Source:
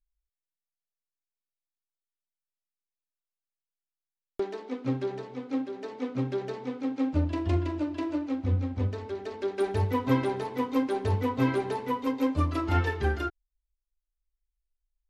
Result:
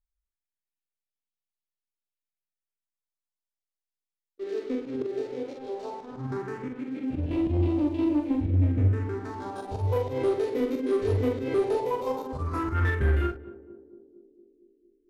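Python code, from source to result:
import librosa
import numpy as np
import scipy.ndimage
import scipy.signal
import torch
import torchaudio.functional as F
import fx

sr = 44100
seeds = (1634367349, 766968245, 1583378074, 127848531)

p1 = fx.spec_steps(x, sr, hold_ms=50)
p2 = fx.phaser_stages(p1, sr, stages=4, low_hz=150.0, high_hz=1400.0, hz=0.16, feedback_pct=20)
p3 = fx.auto_swell(p2, sr, attack_ms=154.0)
p4 = fx.leveller(p3, sr, passes=2)
p5 = fx.high_shelf(p4, sr, hz=9500.0, db=-7.0)
p6 = fx.doubler(p5, sr, ms=43.0, db=-5.0)
p7 = p6 + fx.echo_banded(p6, sr, ms=229, feedback_pct=71, hz=320.0, wet_db=-13.5, dry=0)
y = fx.dynamic_eq(p7, sr, hz=3800.0, q=0.71, threshold_db=-49.0, ratio=4.0, max_db=-5)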